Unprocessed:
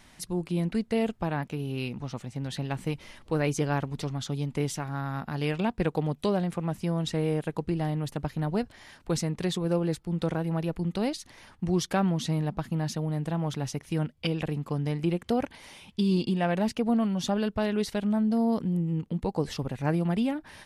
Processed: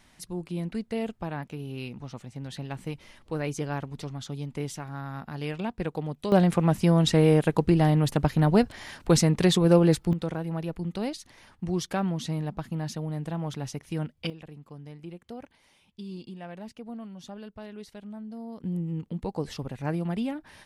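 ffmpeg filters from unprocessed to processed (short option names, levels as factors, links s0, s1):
-af "asetnsamples=n=441:p=0,asendcmd='6.32 volume volume 8dB;10.13 volume volume -2.5dB;14.3 volume volume -14.5dB;18.64 volume volume -3dB',volume=0.631"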